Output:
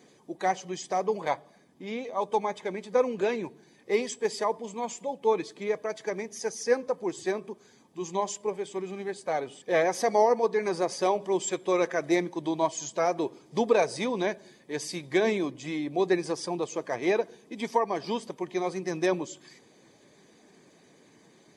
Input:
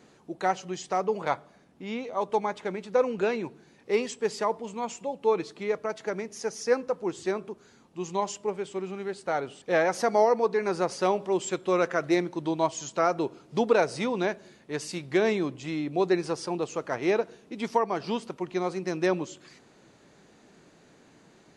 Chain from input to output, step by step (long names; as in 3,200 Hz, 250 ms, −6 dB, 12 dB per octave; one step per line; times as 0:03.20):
spectral magnitudes quantised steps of 15 dB
high-shelf EQ 5,400 Hz +6 dB
notch comb filter 1,400 Hz